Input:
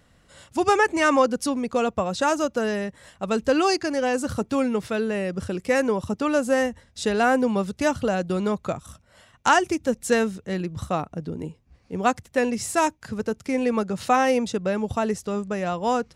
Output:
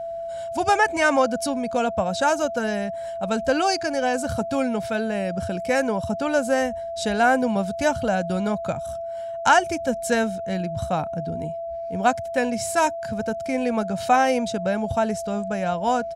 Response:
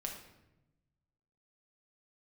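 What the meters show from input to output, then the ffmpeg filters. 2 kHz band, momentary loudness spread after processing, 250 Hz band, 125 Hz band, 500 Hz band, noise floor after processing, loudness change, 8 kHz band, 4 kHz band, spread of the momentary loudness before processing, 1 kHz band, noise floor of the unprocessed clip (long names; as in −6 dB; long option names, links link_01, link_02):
+2.0 dB, 10 LU, −1.0 dB, +1.5 dB, +0.5 dB, −31 dBFS, +0.5 dB, +1.0 dB, +1.0 dB, 10 LU, +2.5 dB, −60 dBFS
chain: -af "aeval=exprs='val(0)+0.0282*sin(2*PI*670*n/s)':channel_layout=same,aecho=1:1:1.3:0.48"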